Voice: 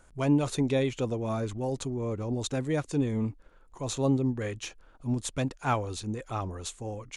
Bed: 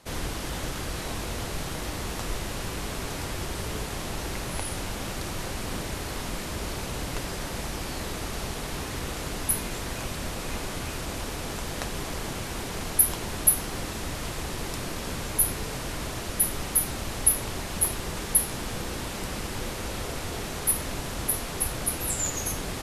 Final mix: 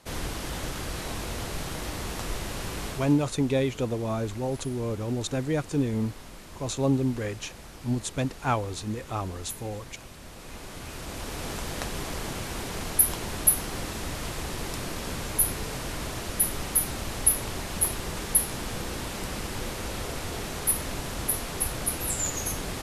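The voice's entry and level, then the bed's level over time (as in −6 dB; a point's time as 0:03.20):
2.80 s, +1.5 dB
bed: 0:02.88 −1 dB
0:03.23 −12.5 dB
0:10.21 −12.5 dB
0:11.45 −0.5 dB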